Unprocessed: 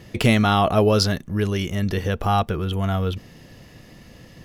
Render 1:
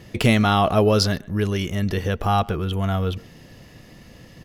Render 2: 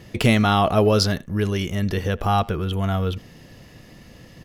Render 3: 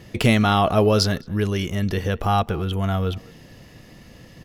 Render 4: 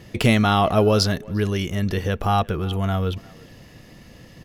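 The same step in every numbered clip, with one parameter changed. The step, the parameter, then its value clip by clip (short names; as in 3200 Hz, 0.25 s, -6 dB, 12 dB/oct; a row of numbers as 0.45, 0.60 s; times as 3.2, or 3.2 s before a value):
speakerphone echo, time: 130, 80, 210, 350 ms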